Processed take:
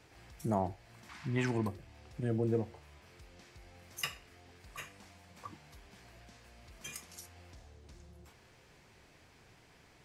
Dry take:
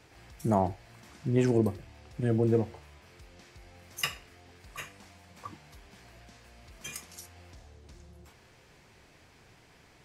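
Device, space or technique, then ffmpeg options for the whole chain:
parallel compression: -filter_complex "[0:a]asplit=2[a][b];[b]acompressor=threshold=-41dB:ratio=6,volume=-5dB[c];[a][c]amix=inputs=2:normalize=0,asettb=1/sr,asplit=3[d][e][f];[d]atrim=end=1.094[g];[e]atrim=start=1.09:end=1.68,asetpts=PTS-STARTPTS,afade=t=in:d=0.004:c=qsin,afade=t=out:st=0.586:d=0.004:c=qsin,equalizer=f=500:t=o:w=1:g=-9,equalizer=f=1k:t=o:w=1:g=10,equalizer=f=2k:t=o:w=1:g=8,equalizer=f=4k:t=o:w=1:g=5[h];[f]atrim=start=1.676[i];[g][h]acrossfade=d=0.004:c1=hsin:c2=qsin[j];[j][i]acrossfade=d=0.004:c1=qsin:c2=hsin,volume=-7dB"

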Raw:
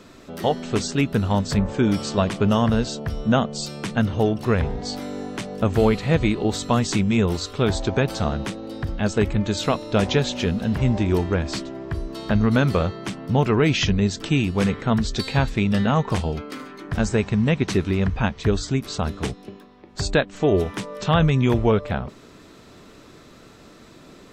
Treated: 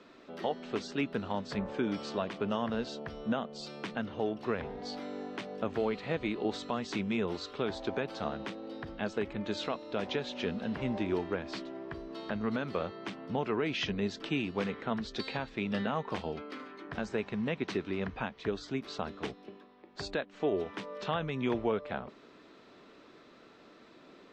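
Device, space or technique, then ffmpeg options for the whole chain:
DJ mixer with the lows and highs turned down: -filter_complex "[0:a]acrossover=split=210 4900:gain=0.158 1 0.0708[a][b][c];[a][b][c]amix=inputs=3:normalize=0,alimiter=limit=-13dB:level=0:latency=1:release=337,volume=-7.5dB"

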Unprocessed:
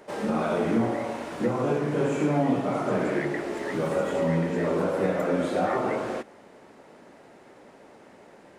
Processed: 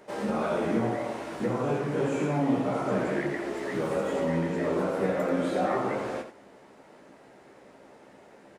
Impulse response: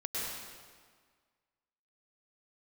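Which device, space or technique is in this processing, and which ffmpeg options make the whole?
slapback doubling: -filter_complex "[0:a]asplit=3[a][b][c];[b]adelay=15,volume=-7dB[d];[c]adelay=84,volume=-9dB[e];[a][d][e]amix=inputs=3:normalize=0,volume=-3dB"

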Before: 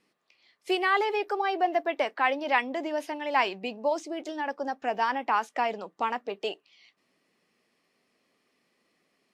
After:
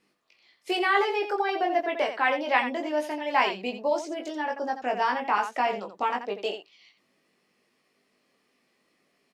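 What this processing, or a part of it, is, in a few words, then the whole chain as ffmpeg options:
slapback doubling: -filter_complex "[0:a]asplit=3[a][b][c];[b]adelay=20,volume=-3.5dB[d];[c]adelay=86,volume=-9dB[e];[a][d][e]amix=inputs=3:normalize=0"

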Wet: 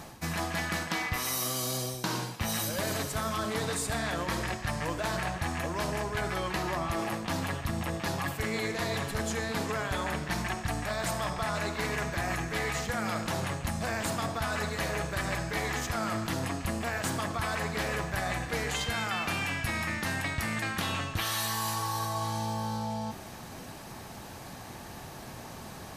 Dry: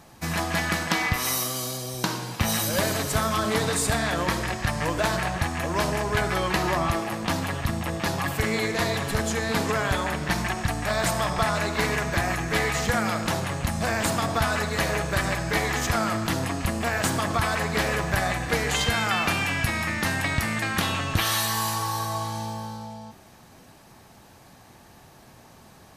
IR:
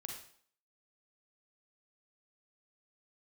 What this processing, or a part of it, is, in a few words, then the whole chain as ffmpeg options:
compression on the reversed sound: -af "areverse,acompressor=threshold=-37dB:ratio=6,areverse,volume=7dB"

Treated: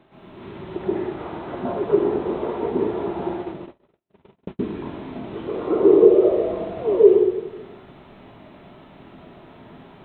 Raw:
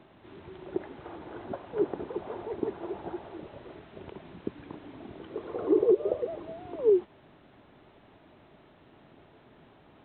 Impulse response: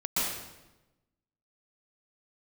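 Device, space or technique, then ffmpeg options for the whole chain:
bathroom: -filter_complex "[1:a]atrim=start_sample=2205[a];[0:a][a]afir=irnorm=-1:irlink=0,asettb=1/sr,asplit=3[b][c][d];[b]atrim=end=2.784[e];[c]atrim=start=2.78:end=4.71,asetpts=PTS-STARTPTS,afade=t=in:d=0.004:c=qsin,afade=t=out:st=1.926:d=0.004:c=qsin,agate=range=-52dB:threshold=-31dB:ratio=16:detection=peak[f];[d]atrim=start=4.706[g];[e][f]acrossfade=d=0.004:c1=hsin:c2=qsin[h];[h][g]acrossfade=d=0.004:c1=qsin:c2=hsin,volume=1.5dB"

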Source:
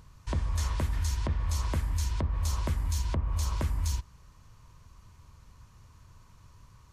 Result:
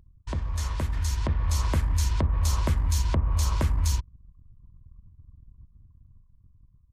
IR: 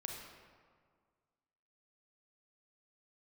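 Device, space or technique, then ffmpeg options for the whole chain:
voice memo with heavy noise removal: -af "anlmdn=0.0251,dynaudnorm=f=260:g=9:m=5.5dB"

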